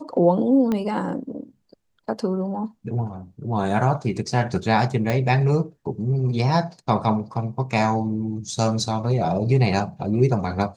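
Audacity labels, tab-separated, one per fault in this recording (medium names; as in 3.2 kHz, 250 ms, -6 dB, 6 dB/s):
0.720000	0.720000	pop -13 dBFS
5.100000	5.100000	pop -10 dBFS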